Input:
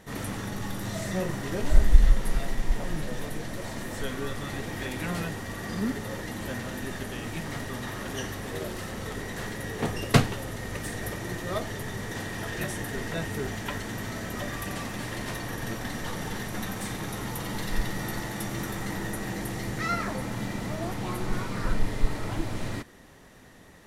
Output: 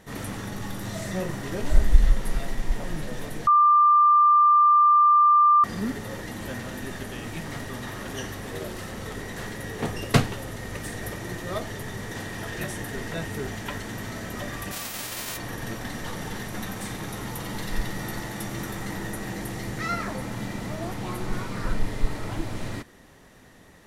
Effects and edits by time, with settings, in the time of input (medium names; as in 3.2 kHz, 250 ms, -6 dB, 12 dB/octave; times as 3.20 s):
3.47–5.64 s: bleep 1.19 kHz -13.5 dBFS
14.71–15.36 s: formants flattened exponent 0.3